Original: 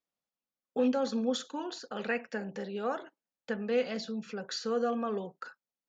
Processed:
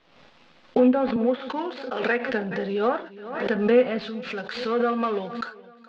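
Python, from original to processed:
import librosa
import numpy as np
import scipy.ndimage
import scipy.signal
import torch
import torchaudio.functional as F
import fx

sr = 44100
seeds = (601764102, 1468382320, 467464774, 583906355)

p1 = fx.dead_time(x, sr, dead_ms=0.1)
p2 = scipy.signal.sosfilt(scipy.signal.butter(4, 4100.0, 'lowpass', fs=sr, output='sos'), p1)
p3 = fx.env_lowpass_down(p2, sr, base_hz=2300.0, full_db=-27.5)
p4 = fx.highpass(p3, sr, hz=280.0, slope=12, at=(1.16, 2.29))
p5 = fx.tilt_shelf(p4, sr, db=-5.5, hz=1200.0, at=(3.99, 5.46))
p6 = fx.rider(p5, sr, range_db=5, speed_s=2.0)
p7 = p5 + F.gain(torch.from_numpy(p6), -1.0).numpy()
p8 = fx.doubler(p7, sr, ms=12.0, db=-11)
p9 = p8 + fx.echo_feedback(p8, sr, ms=420, feedback_pct=56, wet_db=-22.0, dry=0)
p10 = fx.pre_swell(p9, sr, db_per_s=60.0)
y = F.gain(torch.from_numpy(p10), 3.0).numpy()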